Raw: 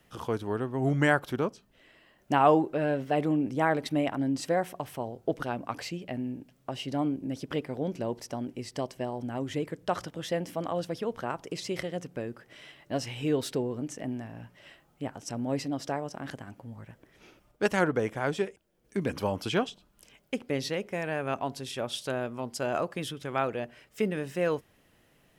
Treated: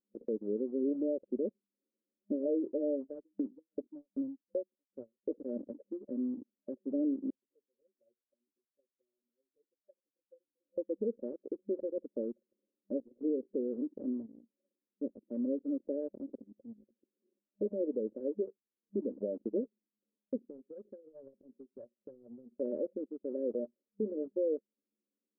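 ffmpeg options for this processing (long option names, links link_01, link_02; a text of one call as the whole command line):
ffmpeg -i in.wav -filter_complex "[0:a]asettb=1/sr,asplit=3[link_01][link_02][link_03];[link_01]atrim=end=3.014[link_04];[link_02]atrim=start=3.01:end=5.24,asetpts=PTS-STARTPTS,afade=type=in:duration=0.004:curve=qsin,afade=type=out:start_time=2.226:duration=0.004:curve=qsin,aeval=exprs='val(0)*pow(10,-38*if(lt(mod(2.6*n/s,1),2*abs(2.6)/1000),1-mod(2.6*n/s,1)/(2*abs(2.6)/1000),(mod(2.6*n/s,1)-2*abs(2.6)/1000)/(1-2*abs(2.6)/1000))/20)':channel_layout=same[link_05];[link_03]atrim=start=5.236[link_06];[link_04][link_05]acrossfade=duration=0.004:curve1=hsin:curve2=qsin[link_07];[link_07][link_06]acrossfade=duration=0.004:curve1=qsin:curve2=hsin,asettb=1/sr,asplit=3[link_08][link_09][link_10];[link_08]atrim=end=7.304[link_11];[link_09]atrim=start=7.3:end=10.78,asetpts=PTS-STARTPTS,afade=type=in:duration=0.004:curve=qsin,afade=type=out:start_time=3.476:duration=0.004:curve=qsin,aderivative[link_12];[link_10]atrim=start=10.776[link_13];[link_11][link_12]acrossfade=duration=0.004:curve1=hsin:curve2=qsin[link_14];[link_14][link_13]acrossfade=duration=0.004:curve1=qsin:curve2=hsin,asplit=3[link_15][link_16][link_17];[link_15]afade=type=out:start_time=20.39:duration=0.02[link_18];[link_16]acompressor=threshold=-39dB:ratio=12:attack=3.2:release=140:knee=1:detection=peak,afade=type=in:start_time=20.39:duration=0.02,afade=type=out:start_time=22.5:duration=0.02[link_19];[link_17]afade=type=in:start_time=22.5:duration=0.02[link_20];[link_18][link_19][link_20]amix=inputs=3:normalize=0,afftfilt=real='re*between(b*sr/4096,200,610)':imag='im*between(b*sr/4096,200,610)':win_size=4096:overlap=0.75,anlmdn=0.398,alimiter=level_in=0.5dB:limit=-24dB:level=0:latency=1:release=265,volume=-0.5dB" out.wav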